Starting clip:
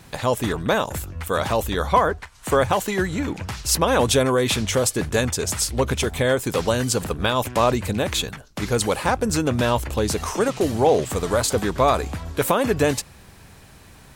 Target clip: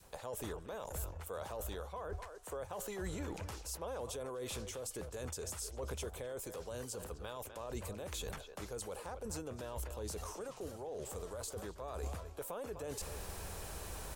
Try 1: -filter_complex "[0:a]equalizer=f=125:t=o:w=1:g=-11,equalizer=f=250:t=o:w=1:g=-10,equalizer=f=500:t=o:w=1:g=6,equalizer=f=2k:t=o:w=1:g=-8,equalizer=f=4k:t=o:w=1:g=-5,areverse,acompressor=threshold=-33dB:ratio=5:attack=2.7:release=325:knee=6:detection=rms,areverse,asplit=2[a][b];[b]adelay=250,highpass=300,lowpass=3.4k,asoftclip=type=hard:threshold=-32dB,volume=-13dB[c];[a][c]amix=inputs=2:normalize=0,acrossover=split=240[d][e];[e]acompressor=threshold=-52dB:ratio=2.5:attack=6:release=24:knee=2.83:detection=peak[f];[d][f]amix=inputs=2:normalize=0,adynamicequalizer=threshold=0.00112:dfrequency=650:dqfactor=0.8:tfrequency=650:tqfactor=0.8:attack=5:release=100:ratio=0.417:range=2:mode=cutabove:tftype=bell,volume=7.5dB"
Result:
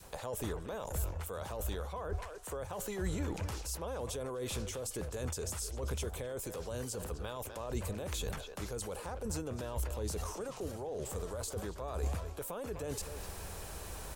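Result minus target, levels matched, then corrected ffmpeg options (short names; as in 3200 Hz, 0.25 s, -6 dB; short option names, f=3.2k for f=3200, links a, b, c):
compressor: peak gain reduction -7 dB
-filter_complex "[0:a]equalizer=f=125:t=o:w=1:g=-11,equalizer=f=250:t=o:w=1:g=-10,equalizer=f=500:t=o:w=1:g=6,equalizer=f=2k:t=o:w=1:g=-8,equalizer=f=4k:t=o:w=1:g=-5,areverse,acompressor=threshold=-42dB:ratio=5:attack=2.7:release=325:knee=6:detection=rms,areverse,asplit=2[a][b];[b]adelay=250,highpass=300,lowpass=3.4k,asoftclip=type=hard:threshold=-32dB,volume=-13dB[c];[a][c]amix=inputs=2:normalize=0,acrossover=split=240[d][e];[e]acompressor=threshold=-52dB:ratio=2.5:attack=6:release=24:knee=2.83:detection=peak[f];[d][f]amix=inputs=2:normalize=0,adynamicequalizer=threshold=0.00112:dfrequency=650:dqfactor=0.8:tfrequency=650:tqfactor=0.8:attack=5:release=100:ratio=0.417:range=2:mode=cutabove:tftype=bell,volume=7.5dB"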